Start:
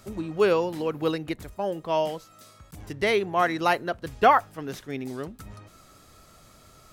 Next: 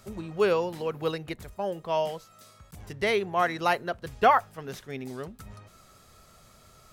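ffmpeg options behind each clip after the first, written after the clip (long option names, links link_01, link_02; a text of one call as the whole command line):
ffmpeg -i in.wav -af "equalizer=frequency=300:width=8:gain=-13,volume=-2dB" out.wav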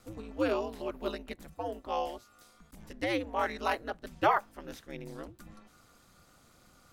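ffmpeg -i in.wav -af "aeval=exprs='val(0)*sin(2*PI*110*n/s)':channel_layout=same,volume=-3dB" out.wav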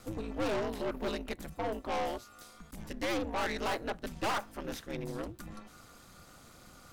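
ffmpeg -i in.wav -af "aeval=exprs='(tanh(70.8*val(0)+0.4)-tanh(0.4))/70.8':channel_layout=same,volume=7.5dB" out.wav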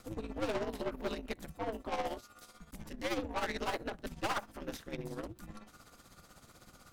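ffmpeg -i in.wav -af "tremolo=f=16:d=0.65" out.wav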